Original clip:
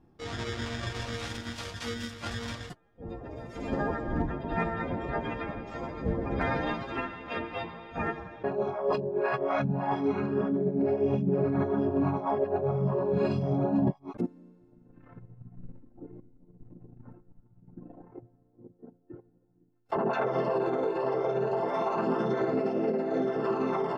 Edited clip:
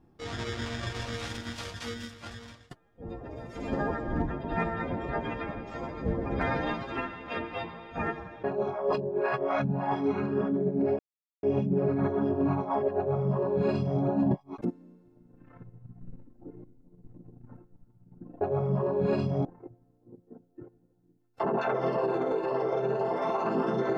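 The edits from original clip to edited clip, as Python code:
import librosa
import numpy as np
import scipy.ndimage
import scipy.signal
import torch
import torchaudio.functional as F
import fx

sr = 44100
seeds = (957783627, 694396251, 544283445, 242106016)

y = fx.edit(x, sr, fx.fade_out_to(start_s=1.66, length_s=1.05, floor_db=-21.0),
    fx.insert_silence(at_s=10.99, length_s=0.44),
    fx.duplicate(start_s=12.53, length_s=1.04, to_s=17.97), tone=tone)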